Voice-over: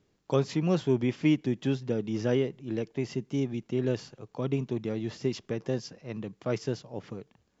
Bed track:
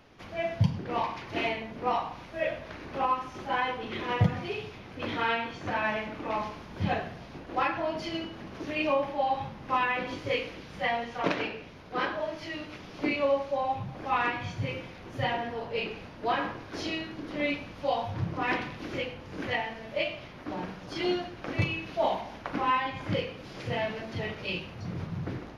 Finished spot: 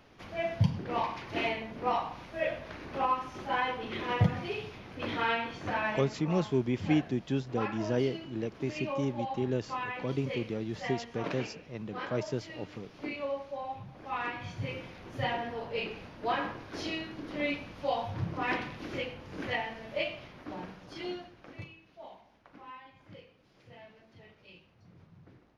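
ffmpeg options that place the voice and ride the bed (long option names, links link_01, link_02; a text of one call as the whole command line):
ffmpeg -i stem1.wav -i stem2.wav -filter_complex "[0:a]adelay=5650,volume=-3dB[link_01];[1:a]volume=5dB,afade=type=out:start_time=5.74:duration=0.5:silence=0.421697,afade=type=in:start_time=14.04:duration=0.83:silence=0.473151,afade=type=out:start_time=19.98:duration=1.79:silence=0.112202[link_02];[link_01][link_02]amix=inputs=2:normalize=0" out.wav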